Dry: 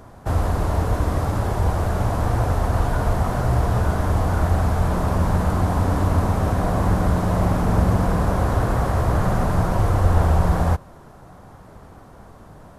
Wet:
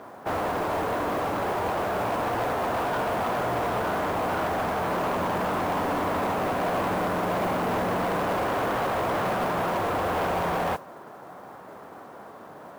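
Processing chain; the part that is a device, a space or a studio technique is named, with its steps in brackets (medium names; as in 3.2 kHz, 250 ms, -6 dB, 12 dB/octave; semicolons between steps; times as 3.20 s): carbon microphone (band-pass 320–3000 Hz; saturation -27 dBFS, distortion -11 dB; modulation noise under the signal 22 dB); trim +4.5 dB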